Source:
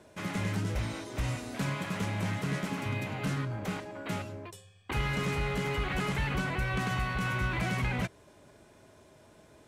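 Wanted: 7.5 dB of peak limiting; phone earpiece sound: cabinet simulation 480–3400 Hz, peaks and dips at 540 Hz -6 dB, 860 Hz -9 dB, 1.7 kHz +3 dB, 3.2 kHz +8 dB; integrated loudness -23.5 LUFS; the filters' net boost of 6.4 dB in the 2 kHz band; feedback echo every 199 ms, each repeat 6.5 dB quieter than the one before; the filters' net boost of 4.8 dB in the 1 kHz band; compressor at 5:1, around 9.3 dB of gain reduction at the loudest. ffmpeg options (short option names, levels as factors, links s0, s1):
-af "equalizer=f=1000:t=o:g=9,equalizer=f=2000:t=o:g=3,acompressor=threshold=0.0178:ratio=5,alimiter=level_in=2.24:limit=0.0631:level=0:latency=1,volume=0.447,highpass=480,equalizer=f=540:t=q:w=4:g=-6,equalizer=f=860:t=q:w=4:g=-9,equalizer=f=1700:t=q:w=4:g=3,equalizer=f=3200:t=q:w=4:g=8,lowpass=f=3400:w=0.5412,lowpass=f=3400:w=1.3066,aecho=1:1:199|398|597|796|995|1194:0.473|0.222|0.105|0.0491|0.0231|0.0109,volume=7.5"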